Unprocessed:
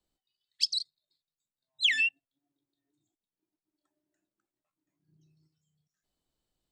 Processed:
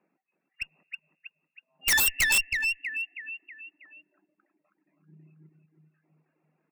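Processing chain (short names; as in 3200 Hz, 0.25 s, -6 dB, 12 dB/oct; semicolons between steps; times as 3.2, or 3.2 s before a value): in parallel at 0 dB: limiter -22.5 dBFS, peak gain reduction 9 dB; on the sum: feedback echo 0.321 s, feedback 47%, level -5 dB; on a send at -20.5 dB: reverb RT60 2.3 s, pre-delay 60 ms; on the sum: dynamic EQ 660 Hz, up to +6 dB, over -47 dBFS, Q 1.1; FFT band-pass 150–2800 Hz; wrapped overs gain 21 dB; reverb removal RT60 0.87 s; one-sided clip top -35.5 dBFS, bottom -23 dBFS; gain +8 dB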